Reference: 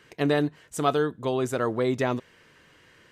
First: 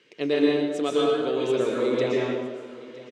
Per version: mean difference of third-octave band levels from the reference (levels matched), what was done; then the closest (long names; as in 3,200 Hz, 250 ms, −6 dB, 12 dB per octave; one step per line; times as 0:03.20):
9.5 dB: band-pass filter 290–4,900 Hz
flat-topped bell 1,100 Hz −10 dB
on a send: single-tap delay 961 ms −18 dB
on the sum: dense smooth reverb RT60 1.4 s, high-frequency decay 0.65×, pre-delay 105 ms, DRR −4.5 dB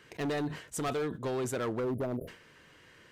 6.5 dB: time-frequency box erased 0:01.80–0:02.28, 710–9,900 Hz
in parallel at −1 dB: downward compressor 8 to 1, threshold −31 dBFS, peak gain reduction 13.5 dB
on the sum: hard clipping −22 dBFS, distortion −9 dB
level that may fall only so fast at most 110 dB per second
level −7 dB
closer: second